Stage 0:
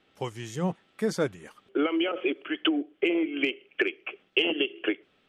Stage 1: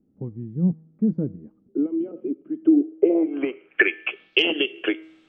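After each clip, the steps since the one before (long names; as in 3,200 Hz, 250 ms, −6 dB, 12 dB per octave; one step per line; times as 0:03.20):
low-pass filter sweep 230 Hz → 7,400 Hz, 0:02.56–0:04.60
tuned comb filter 160 Hz, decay 0.79 s, harmonics all, mix 40%
level +7.5 dB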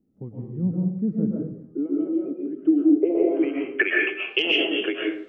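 comb and all-pass reverb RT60 0.63 s, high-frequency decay 0.5×, pre-delay 90 ms, DRR −3 dB
level −4 dB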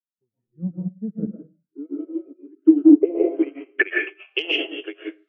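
noise reduction from a noise print of the clip's start 25 dB
expander for the loud parts 2.5 to 1, over −33 dBFS
level +7.5 dB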